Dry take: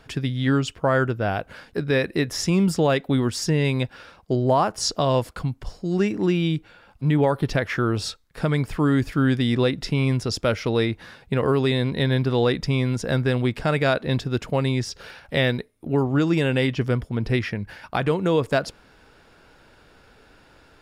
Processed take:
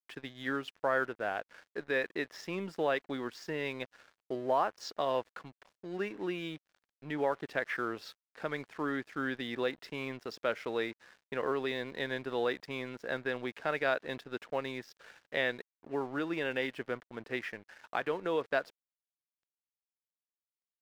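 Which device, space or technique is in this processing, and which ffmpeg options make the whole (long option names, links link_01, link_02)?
pocket radio on a weak battery: -af "highpass=390,lowpass=3300,aeval=exprs='sgn(val(0))*max(abs(val(0))-0.00531,0)':channel_layout=same,equalizer=frequency=1700:width_type=o:width=0.39:gain=4,volume=-8.5dB"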